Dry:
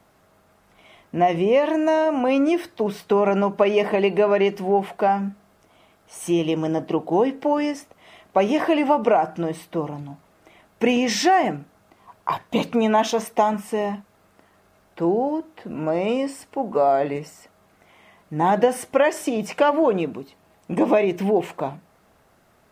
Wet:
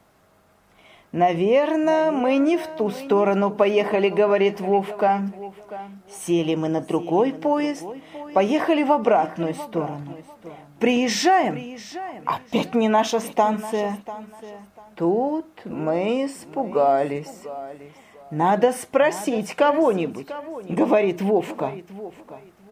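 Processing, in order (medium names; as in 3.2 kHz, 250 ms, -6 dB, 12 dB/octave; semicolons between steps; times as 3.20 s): feedback delay 694 ms, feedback 24%, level -15.5 dB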